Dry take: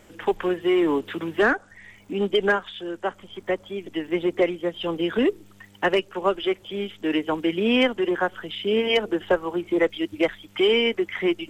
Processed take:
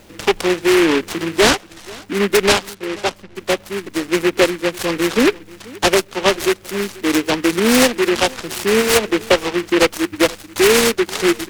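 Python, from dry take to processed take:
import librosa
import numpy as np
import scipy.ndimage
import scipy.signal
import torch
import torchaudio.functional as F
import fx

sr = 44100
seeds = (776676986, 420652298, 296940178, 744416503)

y = fx.steep_lowpass(x, sr, hz=1700.0, slope=48, at=(2.73, 3.35), fade=0.02)
y = y + 10.0 ** (-22.0 / 20.0) * np.pad(y, (int(484 * sr / 1000.0), 0))[:len(y)]
y = fx.noise_mod_delay(y, sr, seeds[0], noise_hz=1800.0, depth_ms=0.16)
y = y * 10.0 ** (7.0 / 20.0)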